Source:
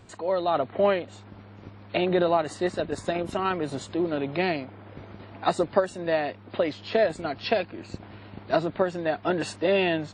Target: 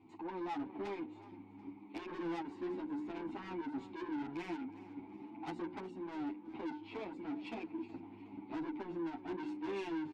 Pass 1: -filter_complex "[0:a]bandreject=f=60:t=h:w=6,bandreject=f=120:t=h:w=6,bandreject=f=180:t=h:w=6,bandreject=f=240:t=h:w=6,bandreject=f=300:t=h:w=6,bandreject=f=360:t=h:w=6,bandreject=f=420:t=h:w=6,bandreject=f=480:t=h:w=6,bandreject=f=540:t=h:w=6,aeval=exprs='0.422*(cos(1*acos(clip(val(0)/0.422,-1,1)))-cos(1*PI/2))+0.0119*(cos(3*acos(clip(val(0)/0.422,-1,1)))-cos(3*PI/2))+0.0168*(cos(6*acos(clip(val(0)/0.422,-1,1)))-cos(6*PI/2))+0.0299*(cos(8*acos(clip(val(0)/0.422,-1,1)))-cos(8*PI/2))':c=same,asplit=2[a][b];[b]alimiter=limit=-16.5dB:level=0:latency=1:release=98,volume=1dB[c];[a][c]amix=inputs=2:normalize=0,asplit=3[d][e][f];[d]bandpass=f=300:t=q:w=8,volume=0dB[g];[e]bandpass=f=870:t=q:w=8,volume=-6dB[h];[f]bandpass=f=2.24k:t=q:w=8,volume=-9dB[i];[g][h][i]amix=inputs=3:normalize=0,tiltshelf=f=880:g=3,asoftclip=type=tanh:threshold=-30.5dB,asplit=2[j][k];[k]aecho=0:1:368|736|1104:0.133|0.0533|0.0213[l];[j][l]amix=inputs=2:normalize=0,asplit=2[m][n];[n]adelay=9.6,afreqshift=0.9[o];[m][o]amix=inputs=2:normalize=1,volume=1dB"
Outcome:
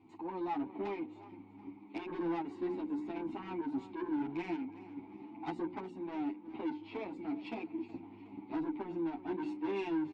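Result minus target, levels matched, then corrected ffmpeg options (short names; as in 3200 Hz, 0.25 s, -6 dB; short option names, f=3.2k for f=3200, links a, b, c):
soft clip: distortion -4 dB
-filter_complex "[0:a]bandreject=f=60:t=h:w=6,bandreject=f=120:t=h:w=6,bandreject=f=180:t=h:w=6,bandreject=f=240:t=h:w=6,bandreject=f=300:t=h:w=6,bandreject=f=360:t=h:w=6,bandreject=f=420:t=h:w=6,bandreject=f=480:t=h:w=6,bandreject=f=540:t=h:w=6,aeval=exprs='0.422*(cos(1*acos(clip(val(0)/0.422,-1,1)))-cos(1*PI/2))+0.0119*(cos(3*acos(clip(val(0)/0.422,-1,1)))-cos(3*PI/2))+0.0168*(cos(6*acos(clip(val(0)/0.422,-1,1)))-cos(6*PI/2))+0.0299*(cos(8*acos(clip(val(0)/0.422,-1,1)))-cos(8*PI/2))':c=same,asplit=2[a][b];[b]alimiter=limit=-16.5dB:level=0:latency=1:release=98,volume=1dB[c];[a][c]amix=inputs=2:normalize=0,asplit=3[d][e][f];[d]bandpass=f=300:t=q:w=8,volume=0dB[g];[e]bandpass=f=870:t=q:w=8,volume=-6dB[h];[f]bandpass=f=2.24k:t=q:w=8,volume=-9dB[i];[g][h][i]amix=inputs=3:normalize=0,tiltshelf=f=880:g=3,asoftclip=type=tanh:threshold=-36.5dB,asplit=2[j][k];[k]aecho=0:1:368|736|1104:0.133|0.0533|0.0213[l];[j][l]amix=inputs=2:normalize=0,asplit=2[m][n];[n]adelay=9.6,afreqshift=0.9[o];[m][o]amix=inputs=2:normalize=1,volume=1dB"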